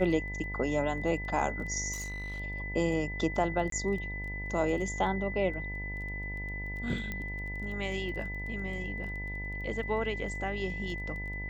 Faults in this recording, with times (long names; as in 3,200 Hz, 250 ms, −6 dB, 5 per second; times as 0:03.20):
mains buzz 50 Hz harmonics 20 −39 dBFS
surface crackle 11 per second −40 dBFS
whistle 2,000 Hz −38 dBFS
0:01.92–0:02.40: clipping −34 dBFS
0:03.70–0:03.72: drop-out 23 ms
0:07.12: click −22 dBFS